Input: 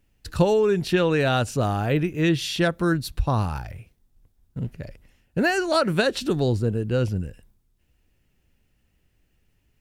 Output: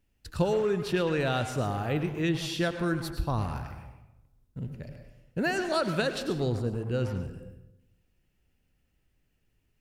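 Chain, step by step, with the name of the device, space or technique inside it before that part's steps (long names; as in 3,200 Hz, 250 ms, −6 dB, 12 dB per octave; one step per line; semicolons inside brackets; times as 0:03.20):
saturated reverb return (on a send at −4.5 dB: convolution reverb RT60 0.90 s, pre-delay 91 ms + soft clipping −22.5 dBFS, distortion −9 dB)
on the sum: level −7 dB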